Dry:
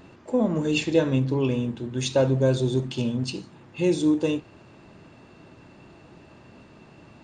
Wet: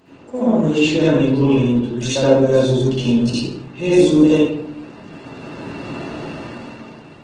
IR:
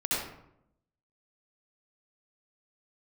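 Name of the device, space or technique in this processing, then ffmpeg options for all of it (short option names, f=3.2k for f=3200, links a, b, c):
far-field microphone of a smart speaker: -filter_complex "[1:a]atrim=start_sample=2205[a];[0:a][a]afir=irnorm=-1:irlink=0,highpass=f=150:p=1,dynaudnorm=f=280:g=7:m=15dB,volume=-1dB" -ar 48000 -c:a libopus -b:a 16k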